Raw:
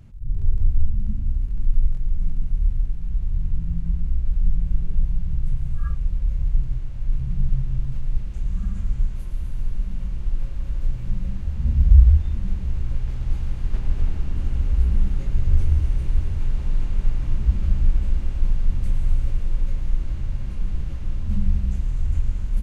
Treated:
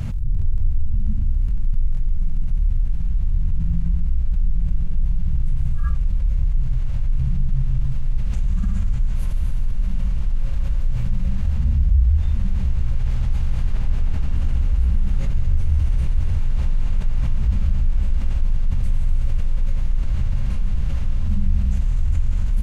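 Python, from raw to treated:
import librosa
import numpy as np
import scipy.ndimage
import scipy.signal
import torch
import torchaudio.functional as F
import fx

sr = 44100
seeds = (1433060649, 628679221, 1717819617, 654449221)

y = fx.peak_eq(x, sr, hz=340.0, db=-10.0, octaves=0.52)
y = fx.env_flatten(y, sr, amount_pct=70)
y = y * librosa.db_to_amplitude(-6.5)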